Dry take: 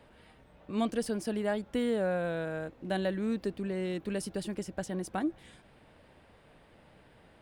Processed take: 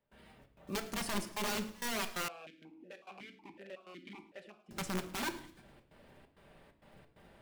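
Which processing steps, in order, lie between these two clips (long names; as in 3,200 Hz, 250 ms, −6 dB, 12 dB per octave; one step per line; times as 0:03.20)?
one scale factor per block 5 bits
wrap-around overflow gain 29 dB
gate pattern ".xxx.xx.xxx" 132 BPM −24 dB
delay with a high-pass on its return 108 ms, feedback 44%, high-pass 1,500 Hz, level −18 dB
rectangular room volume 1,000 cubic metres, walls furnished, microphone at 1.2 metres
0:02.28–0:04.71: formant filter that steps through the vowels 5.4 Hz
level −2.5 dB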